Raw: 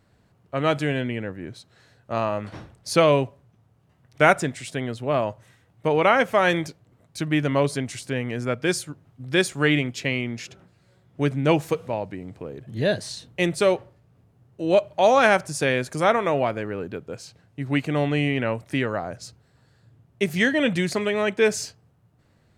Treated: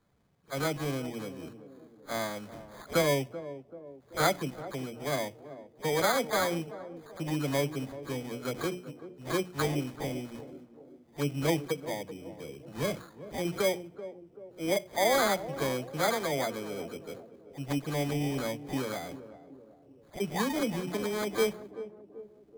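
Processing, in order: delay that grows with frequency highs early, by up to 190 ms; Bessel low-pass 8.1 kHz, order 2; treble shelf 3.6 kHz -10 dB; hum notches 60/120/180/240/300/360 Hz; sample-and-hold 16×; band-passed feedback delay 384 ms, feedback 54%, band-pass 370 Hz, level -12 dB; trim -7.5 dB

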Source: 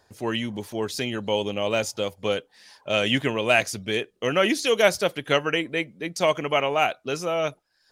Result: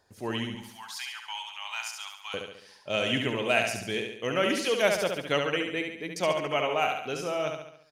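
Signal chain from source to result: 0.55–2.34 s: elliptic high-pass 850 Hz, stop band 40 dB; feedback delay 70 ms, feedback 51%, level -5 dB; trim -6 dB

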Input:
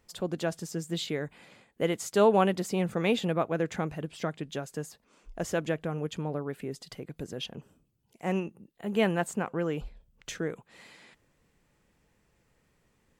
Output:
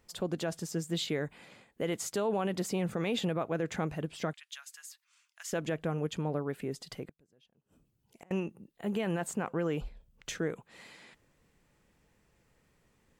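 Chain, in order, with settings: 4.33–5.53 s: Bessel high-pass 2 kHz, order 6; peak limiter -22.5 dBFS, peak gain reduction 11.5 dB; 7.05–8.31 s: inverted gate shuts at -35 dBFS, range -30 dB

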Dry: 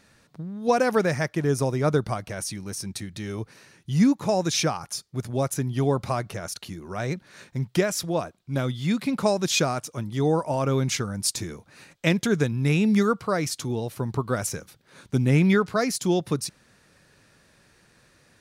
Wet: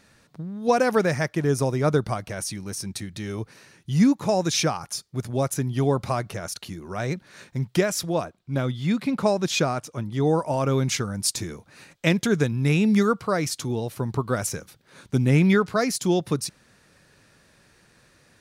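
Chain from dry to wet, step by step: 8.25–10.27 s: treble shelf 4.5 kHz -7 dB; trim +1 dB

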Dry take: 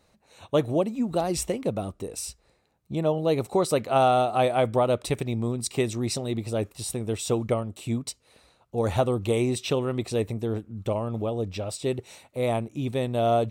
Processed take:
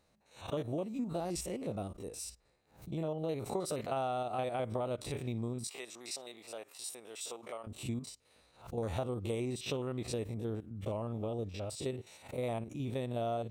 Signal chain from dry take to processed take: spectrogram pixelated in time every 50 ms; compression, threshold -25 dBFS, peak gain reduction 8.5 dB; 5.67–7.67 s: high-pass 720 Hz 12 dB/octave; swell ahead of each attack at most 140 dB/s; trim -7 dB

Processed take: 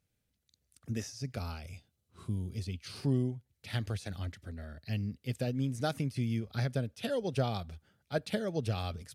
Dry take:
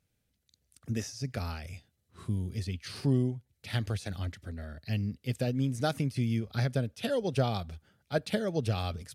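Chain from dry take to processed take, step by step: 1.33–3.00 s: peaking EQ 1.8 kHz -9 dB 0.24 oct; trim -3 dB

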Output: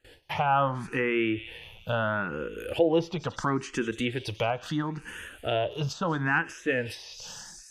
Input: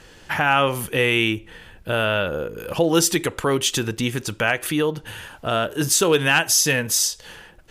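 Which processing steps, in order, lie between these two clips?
gate with hold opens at -36 dBFS; feedback echo behind a high-pass 180 ms, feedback 60%, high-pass 2.6 kHz, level -15.5 dB; low-pass that closes with the level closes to 1.7 kHz, closed at -15.5 dBFS; barber-pole phaser +0.74 Hz; trim -2.5 dB

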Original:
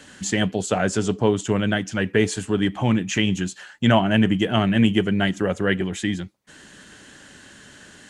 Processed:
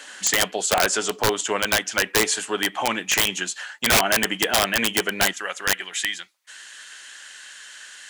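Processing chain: high-pass 700 Hz 12 dB/octave, from 5.33 s 1.5 kHz; integer overflow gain 17 dB; trim +7 dB

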